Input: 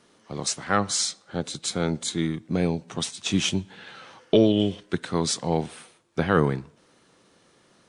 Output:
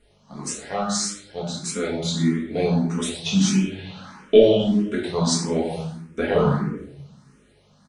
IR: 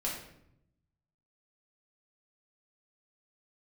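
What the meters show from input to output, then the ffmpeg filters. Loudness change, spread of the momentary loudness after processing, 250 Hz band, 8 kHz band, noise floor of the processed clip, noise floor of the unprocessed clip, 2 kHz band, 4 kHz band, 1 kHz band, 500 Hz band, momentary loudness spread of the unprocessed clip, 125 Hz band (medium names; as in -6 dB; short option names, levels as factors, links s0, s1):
+3.0 dB, 15 LU, +3.5 dB, +1.0 dB, -58 dBFS, -61 dBFS, -1.0 dB, +0.5 dB, 0.0 dB, +5.5 dB, 13 LU, +3.5 dB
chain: -filter_complex "[0:a]bandreject=f=50:t=h:w=6,bandreject=f=100:t=h:w=6,bandreject=f=150:t=h:w=6,bandreject=f=200:t=h:w=6,aecho=1:1:4.8:0.32,dynaudnorm=f=690:g=5:m=3.76,asplit=2[s0][s1];[s1]adelay=90,highpass=300,lowpass=3400,asoftclip=type=hard:threshold=0.335,volume=0.251[s2];[s0][s2]amix=inputs=2:normalize=0,aeval=exprs='val(0)+0.00178*(sin(2*PI*50*n/s)+sin(2*PI*2*50*n/s)/2+sin(2*PI*3*50*n/s)/3+sin(2*PI*4*50*n/s)/4+sin(2*PI*5*50*n/s)/5)':c=same[s3];[1:a]atrim=start_sample=2205[s4];[s3][s4]afir=irnorm=-1:irlink=0,asplit=2[s5][s6];[s6]afreqshift=1.6[s7];[s5][s7]amix=inputs=2:normalize=1,volume=0.708"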